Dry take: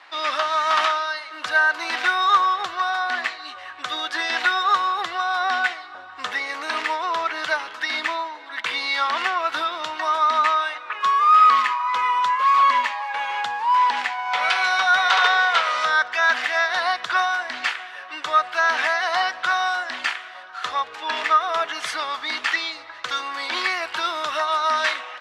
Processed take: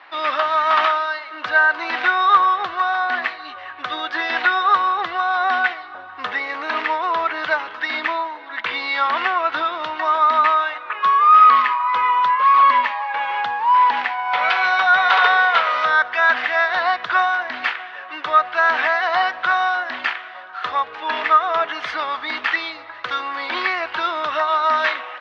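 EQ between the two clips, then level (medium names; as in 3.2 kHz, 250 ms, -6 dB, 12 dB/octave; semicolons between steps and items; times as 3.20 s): distance through air 280 m; +5.0 dB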